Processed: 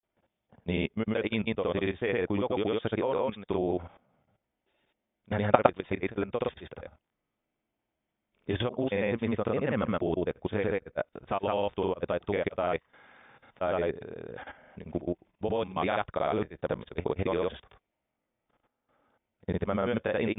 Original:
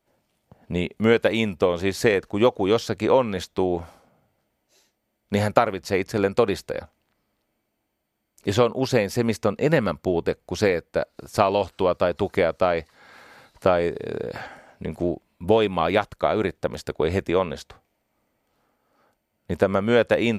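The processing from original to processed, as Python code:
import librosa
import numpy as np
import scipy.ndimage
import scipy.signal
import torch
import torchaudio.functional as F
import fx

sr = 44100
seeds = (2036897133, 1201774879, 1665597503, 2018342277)

y = fx.granulator(x, sr, seeds[0], grain_ms=100.0, per_s=20.0, spray_ms=100.0, spread_st=0)
y = fx.level_steps(y, sr, step_db=14)
y = fx.brickwall_lowpass(y, sr, high_hz=3700.0)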